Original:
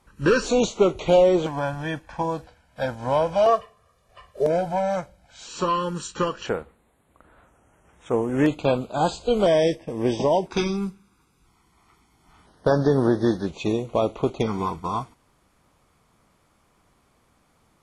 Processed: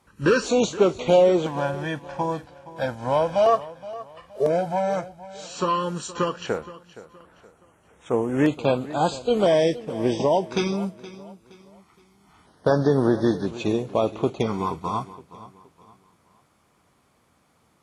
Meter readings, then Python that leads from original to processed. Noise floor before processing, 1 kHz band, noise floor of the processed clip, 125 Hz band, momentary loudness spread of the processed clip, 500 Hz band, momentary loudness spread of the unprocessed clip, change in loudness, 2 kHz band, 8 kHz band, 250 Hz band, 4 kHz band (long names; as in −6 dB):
−64 dBFS, 0.0 dB, −64 dBFS, −0.5 dB, 15 LU, 0.0 dB, 11 LU, 0.0 dB, 0.0 dB, 0.0 dB, 0.0 dB, 0.0 dB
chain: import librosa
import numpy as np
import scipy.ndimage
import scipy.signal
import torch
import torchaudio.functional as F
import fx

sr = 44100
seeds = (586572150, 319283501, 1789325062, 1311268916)

p1 = scipy.signal.sosfilt(scipy.signal.butter(2, 76.0, 'highpass', fs=sr, output='sos'), x)
y = p1 + fx.echo_feedback(p1, sr, ms=470, feedback_pct=35, wet_db=-17.0, dry=0)